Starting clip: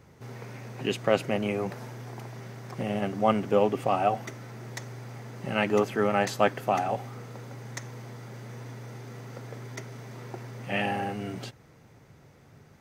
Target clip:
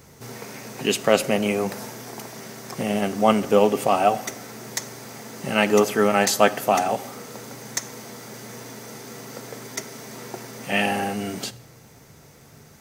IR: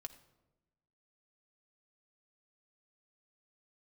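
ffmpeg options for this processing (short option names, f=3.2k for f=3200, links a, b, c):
-filter_complex "[0:a]bass=f=250:g=-2,treble=f=4k:g=10,asplit=2[a][b];[1:a]atrim=start_sample=2205,highshelf=f=8.6k:g=6.5[c];[b][c]afir=irnorm=-1:irlink=0,volume=5.5dB[d];[a][d]amix=inputs=2:normalize=0"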